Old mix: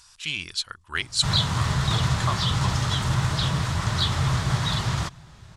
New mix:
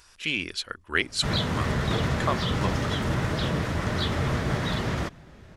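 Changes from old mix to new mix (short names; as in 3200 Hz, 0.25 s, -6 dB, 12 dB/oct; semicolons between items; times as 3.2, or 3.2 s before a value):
speech +3.5 dB; master: add graphic EQ 125/250/500/1000/2000/4000/8000 Hz -8/+8/+8/-6/+3/-6/-9 dB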